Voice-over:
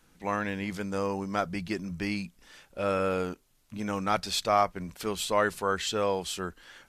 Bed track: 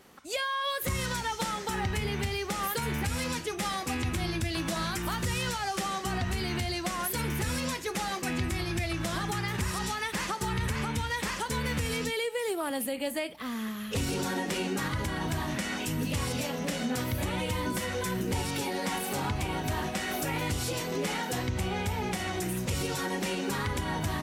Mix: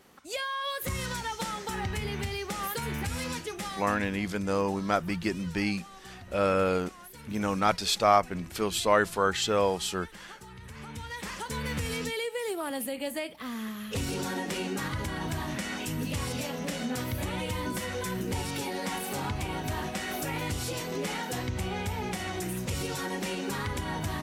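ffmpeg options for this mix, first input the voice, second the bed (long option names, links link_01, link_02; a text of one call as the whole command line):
ffmpeg -i stem1.wav -i stem2.wav -filter_complex "[0:a]adelay=3550,volume=2.5dB[link_01];[1:a]volume=13dB,afade=type=out:start_time=3.39:duration=0.83:silence=0.188365,afade=type=in:start_time=10.63:duration=1.15:silence=0.177828[link_02];[link_01][link_02]amix=inputs=2:normalize=0" out.wav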